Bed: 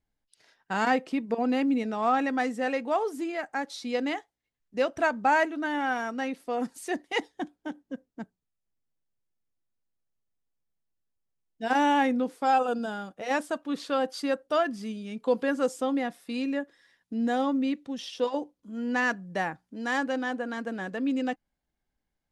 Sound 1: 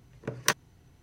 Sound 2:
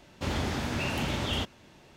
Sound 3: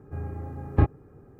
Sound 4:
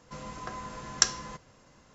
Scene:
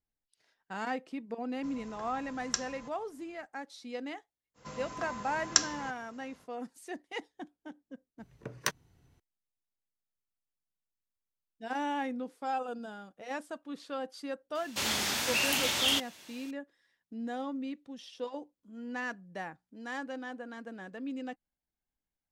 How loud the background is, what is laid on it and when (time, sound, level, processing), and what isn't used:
bed −10.5 dB
0:01.52: mix in 4 −9.5 dB
0:04.54: mix in 4 −1.5 dB, fades 0.05 s + high-pass filter 100 Hz 6 dB per octave
0:08.18: mix in 1 −7 dB
0:14.55: mix in 2 −1 dB + spectral tilt +4.5 dB per octave
not used: 3

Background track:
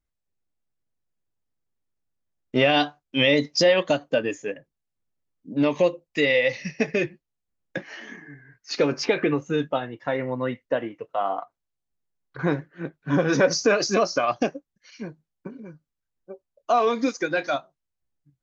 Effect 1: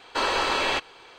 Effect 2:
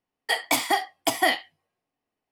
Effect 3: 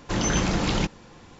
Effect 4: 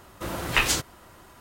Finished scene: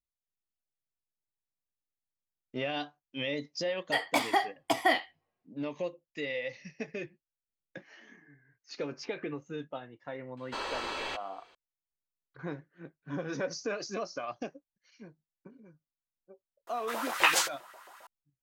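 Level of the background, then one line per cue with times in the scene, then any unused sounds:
background track −15 dB
0:03.63: mix in 2 −3 dB + low-pass filter 2,700 Hz 6 dB per octave
0:10.37: mix in 1 −12 dB
0:16.67: mix in 4 −3.5 dB + auto-filter high-pass saw up 7.5 Hz 500–1,900 Hz
not used: 3

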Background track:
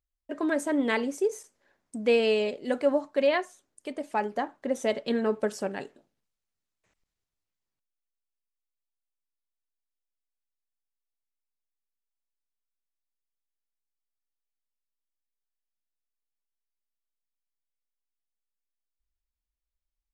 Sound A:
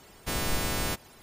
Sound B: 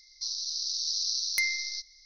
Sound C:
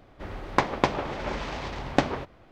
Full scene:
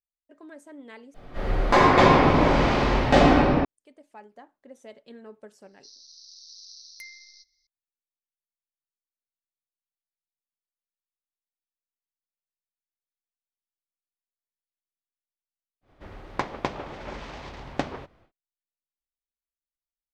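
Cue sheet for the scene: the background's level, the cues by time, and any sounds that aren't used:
background track −18.5 dB
0:01.14: overwrite with C −4.5 dB + rectangular room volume 67 cubic metres, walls hard, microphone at 1.7 metres
0:05.62: mix in B −16.5 dB
0:15.81: mix in C −6 dB, fades 0.10 s
not used: A

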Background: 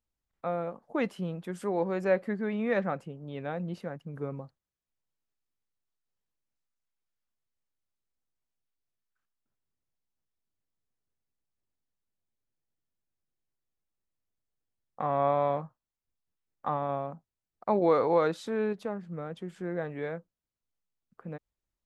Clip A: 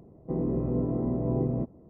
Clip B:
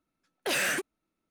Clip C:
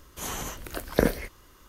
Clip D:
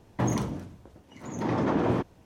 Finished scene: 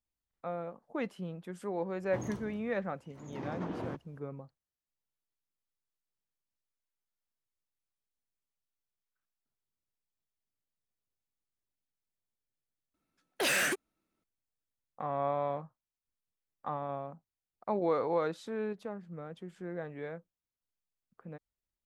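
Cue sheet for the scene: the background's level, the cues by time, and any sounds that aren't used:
background −6 dB
0:01.94: mix in D −13.5 dB
0:12.94: overwrite with B −1 dB
not used: A, C

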